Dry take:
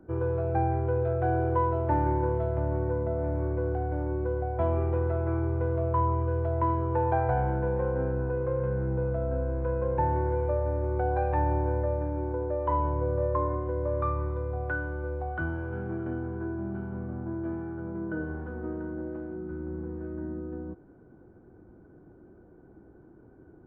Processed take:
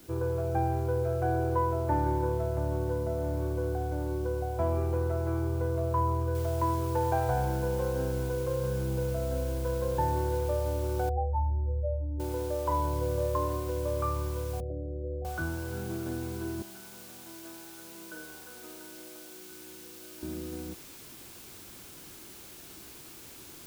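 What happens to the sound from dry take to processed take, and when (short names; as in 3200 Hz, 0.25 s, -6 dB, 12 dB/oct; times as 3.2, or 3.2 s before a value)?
6.35 noise floor step -55 dB -47 dB
11.09–12.2 spectral contrast raised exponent 3.2
14.6–15.25 steep low-pass 680 Hz 96 dB/oct
16.62–20.23 HPF 1400 Hz 6 dB/oct
whole clip: notch 1900 Hz, Q 19; gain -2 dB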